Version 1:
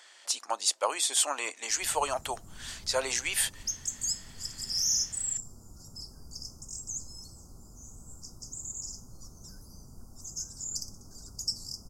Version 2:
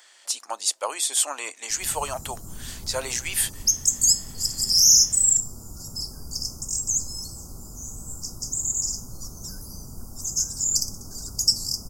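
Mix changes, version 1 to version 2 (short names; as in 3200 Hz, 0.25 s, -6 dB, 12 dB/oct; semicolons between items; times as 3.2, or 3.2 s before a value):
background +10.0 dB; master: add high shelf 10000 Hz +11.5 dB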